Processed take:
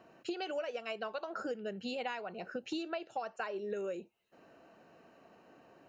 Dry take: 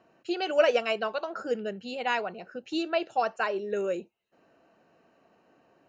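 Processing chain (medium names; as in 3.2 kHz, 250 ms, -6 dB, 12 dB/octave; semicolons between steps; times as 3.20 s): compression 16:1, threshold -38 dBFS, peak gain reduction 22.5 dB; trim +3 dB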